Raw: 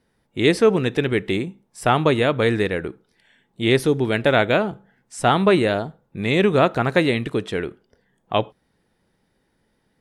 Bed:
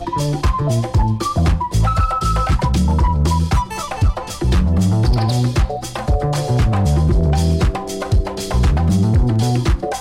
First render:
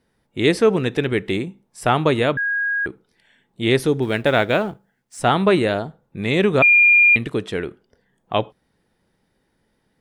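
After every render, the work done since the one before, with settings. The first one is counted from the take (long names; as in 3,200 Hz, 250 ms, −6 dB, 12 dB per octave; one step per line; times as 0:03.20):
0:02.37–0:02.86: beep over 1,640 Hz −18.5 dBFS
0:04.02–0:05.21: mu-law and A-law mismatch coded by A
0:06.62–0:07.16: beep over 2,410 Hz −9 dBFS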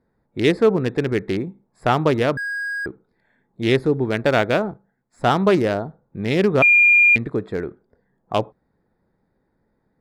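adaptive Wiener filter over 15 samples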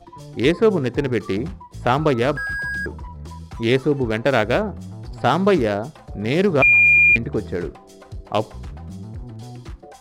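mix in bed −20 dB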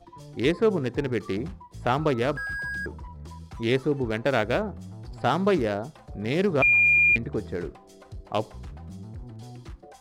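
level −6 dB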